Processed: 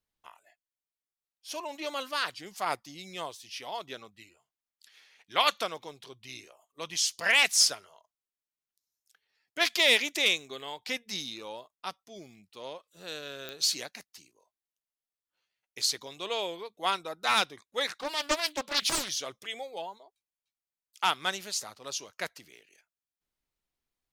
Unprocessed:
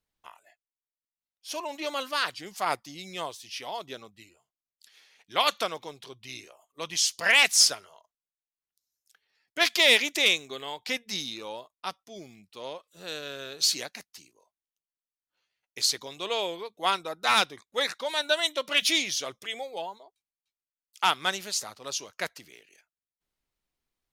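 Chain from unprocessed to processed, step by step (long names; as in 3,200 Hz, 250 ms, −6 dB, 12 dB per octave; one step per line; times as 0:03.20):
0:03.72–0:05.52: parametric band 1,800 Hz +4 dB 2.1 octaves
digital clicks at 0:13.49, −19 dBFS
0:17.87–0:19.09: highs frequency-modulated by the lows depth 0.84 ms
level −3 dB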